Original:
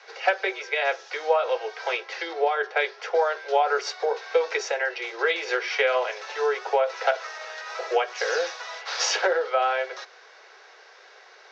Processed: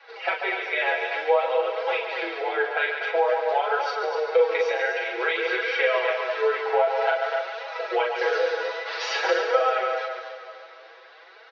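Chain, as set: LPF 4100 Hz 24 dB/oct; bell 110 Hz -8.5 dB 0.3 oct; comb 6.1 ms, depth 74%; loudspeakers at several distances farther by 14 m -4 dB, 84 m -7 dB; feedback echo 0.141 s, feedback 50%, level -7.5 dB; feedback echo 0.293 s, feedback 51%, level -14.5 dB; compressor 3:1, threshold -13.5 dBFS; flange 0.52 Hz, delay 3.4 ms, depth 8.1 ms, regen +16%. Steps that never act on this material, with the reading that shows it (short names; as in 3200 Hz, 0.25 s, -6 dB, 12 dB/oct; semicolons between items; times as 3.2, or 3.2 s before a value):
bell 110 Hz: input band starts at 320 Hz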